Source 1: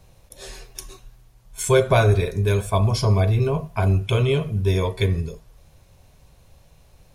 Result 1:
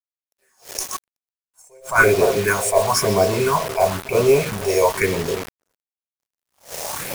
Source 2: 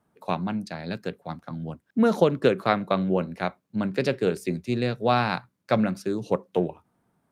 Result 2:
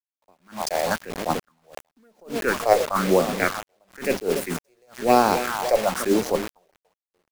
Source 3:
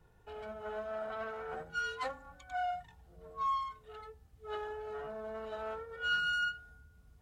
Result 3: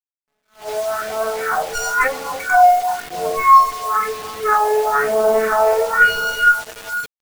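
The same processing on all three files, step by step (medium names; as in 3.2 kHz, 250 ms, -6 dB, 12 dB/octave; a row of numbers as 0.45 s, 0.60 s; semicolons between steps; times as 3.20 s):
tracing distortion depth 0.029 ms; recorder AGC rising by 10 dB/s; high-pass 61 Hz 12 dB/octave; two-band feedback delay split 1.4 kHz, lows 290 ms, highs 125 ms, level -13 dB; in parallel at -1 dB: compression 8:1, threshold -27 dBFS; on the sum: frequency weighting A; valve stage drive 4 dB, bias 0.6; Butterworth band-stop 3.4 kHz, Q 1.2; peaking EQ 110 Hz -7 dB 1.3 oct; phase shifter stages 4, 1 Hz, lowest notch 220–1900 Hz; bit crusher 7-bit; attacks held to a fixed rise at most 200 dB/s; peak normalisation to -2 dBFS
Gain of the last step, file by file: +15.0 dB, +13.0 dB, +11.0 dB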